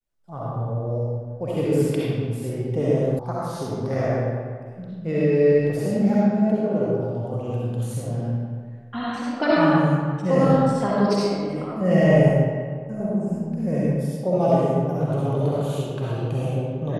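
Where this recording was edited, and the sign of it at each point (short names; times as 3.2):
3.19 sound cut off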